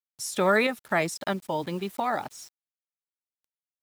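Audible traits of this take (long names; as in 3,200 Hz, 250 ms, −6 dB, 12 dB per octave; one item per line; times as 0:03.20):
a quantiser's noise floor 8 bits, dither none
tremolo saw up 1.5 Hz, depth 45%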